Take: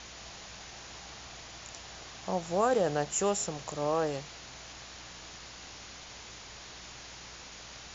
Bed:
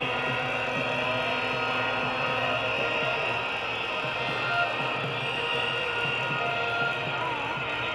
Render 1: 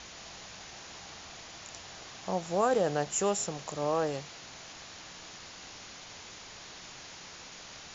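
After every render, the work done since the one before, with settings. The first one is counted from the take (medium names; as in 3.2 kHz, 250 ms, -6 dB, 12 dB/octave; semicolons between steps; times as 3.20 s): de-hum 60 Hz, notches 2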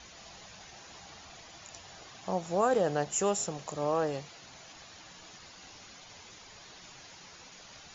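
noise reduction 8 dB, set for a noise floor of -48 dBFS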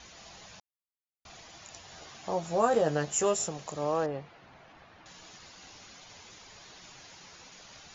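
0.60–1.25 s: mute; 1.90–3.48 s: doubling 13 ms -4 dB; 4.06–5.06 s: low-pass 2 kHz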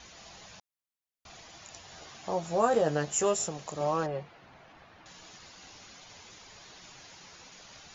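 3.80–4.23 s: comb 5.4 ms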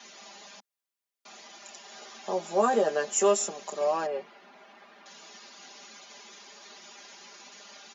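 steep high-pass 210 Hz 48 dB/octave; comb 5 ms, depth 80%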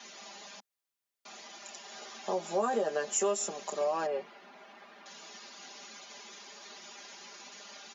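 compression 3:1, threshold -28 dBFS, peak gain reduction 8 dB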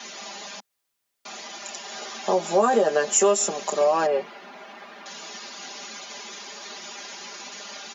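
trim +10.5 dB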